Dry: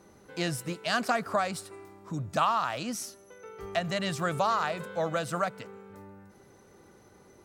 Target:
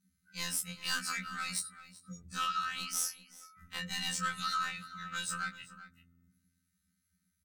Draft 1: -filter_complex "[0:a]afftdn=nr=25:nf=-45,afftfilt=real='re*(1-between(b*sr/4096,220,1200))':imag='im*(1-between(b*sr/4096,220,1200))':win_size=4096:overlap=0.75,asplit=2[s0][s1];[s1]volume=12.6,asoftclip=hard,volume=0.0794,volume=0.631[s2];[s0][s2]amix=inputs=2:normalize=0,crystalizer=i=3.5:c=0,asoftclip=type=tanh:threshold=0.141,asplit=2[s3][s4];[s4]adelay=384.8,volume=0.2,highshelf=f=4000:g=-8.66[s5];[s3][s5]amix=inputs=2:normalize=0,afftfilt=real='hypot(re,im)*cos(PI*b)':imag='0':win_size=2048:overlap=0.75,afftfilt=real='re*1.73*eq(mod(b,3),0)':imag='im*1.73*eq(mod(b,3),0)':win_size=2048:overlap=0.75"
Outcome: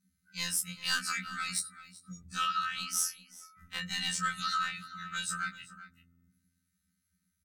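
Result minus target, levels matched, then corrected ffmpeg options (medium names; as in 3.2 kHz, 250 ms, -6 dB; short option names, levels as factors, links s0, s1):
saturation: distortion -6 dB
-filter_complex "[0:a]afftdn=nr=25:nf=-45,afftfilt=real='re*(1-between(b*sr/4096,220,1200))':imag='im*(1-between(b*sr/4096,220,1200))':win_size=4096:overlap=0.75,asplit=2[s0][s1];[s1]volume=12.6,asoftclip=hard,volume=0.0794,volume=0.631[s2];[s0][s2]amix=inputs=2:normalize=0,crystalizer=i=3.5:c=0,asoftclip=type=tanh:threshold=0.0668,asplit=2[s3][s4];[s4]adelay=384.8,volume=0.2,highshelf=f=4000:g=-8.66[s5];[s3][s5]amix=inputs=2:normalize=0,afftfilt=real='hypot(re,im)*cos(PI*b)':imag='0':win_size=2048:overlap=0.75,afftfilt=real='re*1.73*eq(mod(b,3),0)':imag='im*1.73*eq(mod(b,3),0)':win_size=2048:overlap=0.75"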